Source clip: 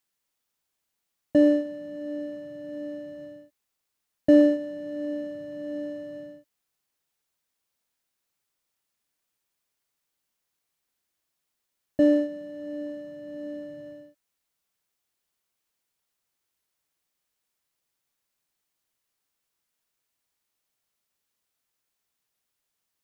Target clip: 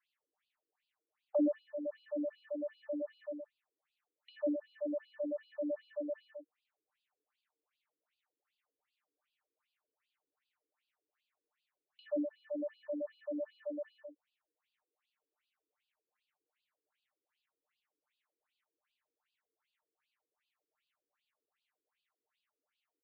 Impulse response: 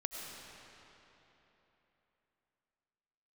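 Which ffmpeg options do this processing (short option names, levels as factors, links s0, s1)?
-af "bass=f=250:g=-7,treble=f=4000:g=-10,aecho=1:1:6.6:0.4,acompressor=threshold=0.0158:ratio=2.5,afftfilt=real='re*between(b*sr/1024,340*pow(3600/340,0.5+0.5*sin(2*PI*2.6*pts/sr))/1.41,340*pow(3600/340,0.5+0.5*sin(2*PI*2.6*pts/sr))*1.41)':imag='im*between(b*sr/1024,340*pow(3600/340,0.5+0.5*sin(2*PI*2.6*pts/sr))/1.41,340*pow(3600/340,0.5+0.5*sin(2*PI*2.6*pts/sr))*1.41)':win_size=1024:overlap=0.75,volume=1.78"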